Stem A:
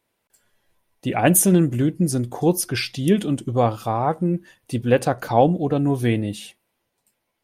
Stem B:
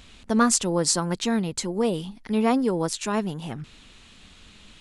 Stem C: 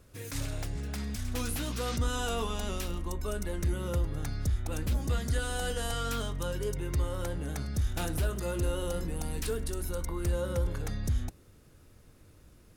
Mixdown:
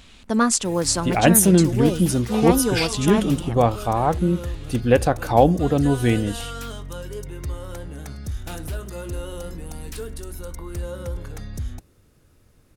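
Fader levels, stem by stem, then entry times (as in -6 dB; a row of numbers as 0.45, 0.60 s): +1.0, +1.0, 0.0 dB; 0.00, 0.00, 0.50 s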